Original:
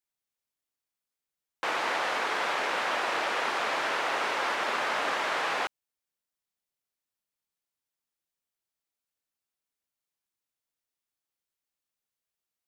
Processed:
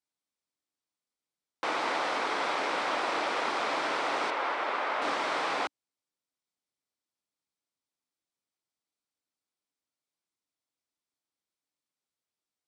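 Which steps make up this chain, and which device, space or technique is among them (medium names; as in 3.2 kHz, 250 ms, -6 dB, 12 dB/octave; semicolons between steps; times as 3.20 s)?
car door speaker (cabinet simulation 86–9000 Hz, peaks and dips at 290 Hz +6 dB, 1.7 kHz -5 dB, 2.8 kHz -4 dB, 6.8 kHz -4 dB); 4.30–5.02 s: tone controls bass -14 dB, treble -12 dB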